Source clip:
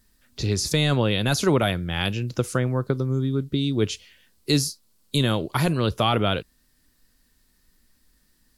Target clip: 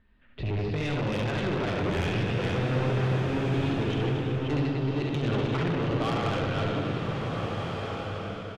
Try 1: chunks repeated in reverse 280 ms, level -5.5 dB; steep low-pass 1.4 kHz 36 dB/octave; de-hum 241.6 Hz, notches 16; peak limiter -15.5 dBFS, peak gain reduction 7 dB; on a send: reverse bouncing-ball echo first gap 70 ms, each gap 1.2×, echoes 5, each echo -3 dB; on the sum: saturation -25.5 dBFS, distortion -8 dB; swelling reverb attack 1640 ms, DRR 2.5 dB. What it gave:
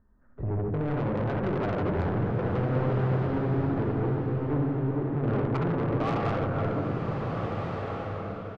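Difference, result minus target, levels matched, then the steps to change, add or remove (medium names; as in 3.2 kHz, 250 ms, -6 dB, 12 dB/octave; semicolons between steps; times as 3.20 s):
4 kHz band -13.0 dB
change: steep low-pass 3 kHz 36 dB/octave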